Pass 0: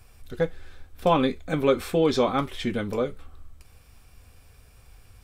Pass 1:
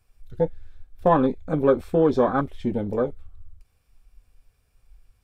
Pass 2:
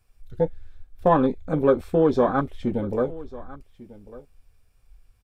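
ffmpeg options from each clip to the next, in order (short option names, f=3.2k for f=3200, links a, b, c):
-af "afwtdn=0.0355,volume=2.5dB"
-af "aecho=1:1:1147:0.112"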